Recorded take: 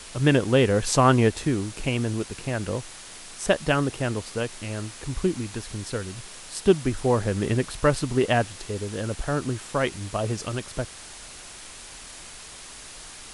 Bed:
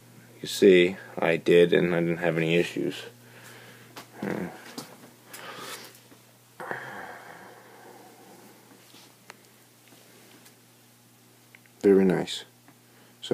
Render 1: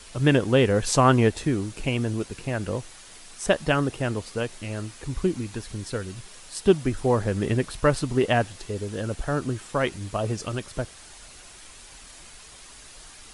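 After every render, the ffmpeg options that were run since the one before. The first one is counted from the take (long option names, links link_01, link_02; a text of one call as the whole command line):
ffmpeg -i in.wav -af "afftdn=noise_reduction=6:noise_floor=-43" out.wav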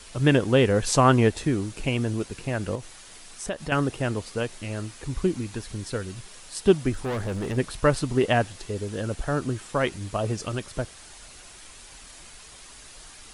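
ffmpeg -i in.wav -filter_complex "[0:a]asettb=1/sr,asplit=3[link_01][link_02][link_03];[link_01]atrim=end=2.754[link_04];[link_02]atrim=start=2.75:end=3.72,asetpts=PTS-STARTPTS,afade=type=in:duration=0.004:curve=qsin,afade=type=out:start_time=0.966:duration=0.004:curve=qsin,acompressor=threshold=-33dB:ratio=2:attack=3.2:release=140:knee=1:detection=peak[link_05];[link_03]atrim=start=3.716[link_06];[link_04][link_05]acrossfade=duration=0.004:curve1=hsin:curve2=qsin[link_07];[link_07][link_06]acrossfade=duration=0.004:curve1=qsin:curve2=hsin,asplit=3[link_08][link_09][link_10];[link_08]afade=type=out:start_time=6.92:duration=0.02[link_11];[link_09]asoftclip=type=hard:threshold=-26dB,afade=type=in:start_time=6.92:duration=0.02,afade=type=out:start_time=7.56:duration=0.02[link_12];[link_10]afade=type=in:start_time=7.56:duration=0.02[link_13];[link_11][link_12][link_13]amix=inputs=3:normalize=0" out.wav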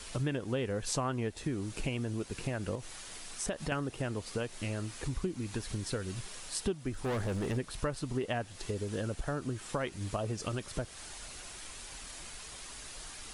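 ffmpeg -i in.wav -af "acompressor=threshold=-32dB:ratio=5" out.wav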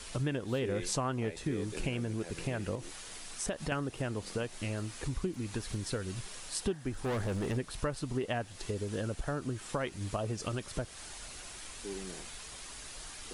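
ffmpeg -i in.wav -i bed.wav -filter_complex "[1:a]volume=-23.5dB[link_01];[0:a][link_01]amix=inputs=2:normalize=0" out.wav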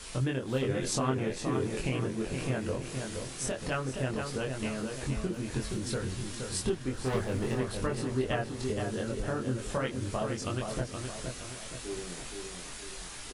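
ffmpeg -i in.wav -filter_complex "[0:a]asplit=2[link_01][link_02];[link_02]adelay=23,volume=-2dB[link_03];[link_01][link_03]amix=inputs=2:normalize=0,asplit=2[link_04][link_05];[link_05]adelay=471,lowpass=frequency=3200:poles=1,volume=-5dB,asplit=2[link_06][link_07];[link_07]adelay=471,lowpass=frequency=3200:poles=1,volume=0.47,asplit=2[link_08][link_09];[link_09]adelay=471,lowpass=frequency=3200:poles=1,volume=0.47,asplit=2[link_10][link_11];[link_11]adelay=471,lowpass=frequency=3200:poles=1,volume=0.47,asplit=2[link_12][link_13];[link_13]adelay=471,lowpass=frequency=3200:poles=1,volume=0.47,asplit=2[link_14][link_15];[link_15]adelay=471,lowpass=frequency=3200:poles=1,volume=0.47[link_16];[link_04][link_06][link_08][link_10][link_12][link_14][link_16]amix=inputs=7:normalize=0" out.wav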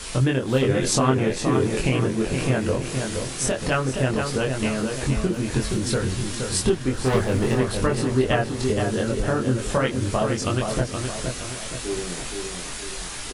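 ffmpeg -i in.wav -af "volume=10dB" out.wav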